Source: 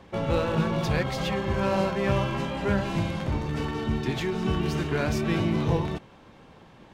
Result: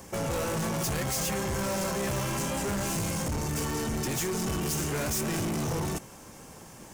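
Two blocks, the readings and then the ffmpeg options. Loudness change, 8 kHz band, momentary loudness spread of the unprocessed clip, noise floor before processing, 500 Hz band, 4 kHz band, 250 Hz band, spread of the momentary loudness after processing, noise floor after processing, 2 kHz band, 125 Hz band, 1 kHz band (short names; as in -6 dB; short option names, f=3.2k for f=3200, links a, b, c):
-3.0 dB, +15.0 dB, 4 LU, -52 dBFS, -4.5 dB, 0.0 dB, -4.5 dB, 7 LU, -48 dBFS, -3.0 dB, -5.0 dB, -3.5 dB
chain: -filter_complex "[0:a]asplit=2[a][b];[b]alimiter=limit=-23dB:level=0:latency=1,volume=-1dB[c];[a][c]amix=inputs=2:normalize=0,aexciter=amount=12.8:drive=5.1:freq=5.6k,asoftclip=type=hard:threshold=-25dB,volume=-3dB"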